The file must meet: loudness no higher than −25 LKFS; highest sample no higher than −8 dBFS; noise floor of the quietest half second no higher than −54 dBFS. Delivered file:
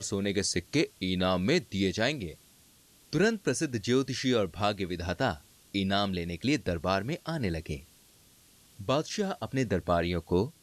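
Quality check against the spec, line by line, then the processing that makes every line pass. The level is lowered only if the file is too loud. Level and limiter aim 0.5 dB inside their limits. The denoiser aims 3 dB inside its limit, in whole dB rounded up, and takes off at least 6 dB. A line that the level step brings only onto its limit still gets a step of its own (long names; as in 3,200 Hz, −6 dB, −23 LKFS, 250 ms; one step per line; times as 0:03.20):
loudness −30.0 LKFS: in spec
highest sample −14.0 dBFS: in spec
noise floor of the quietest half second −60 dBFS: in spec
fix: no processing needed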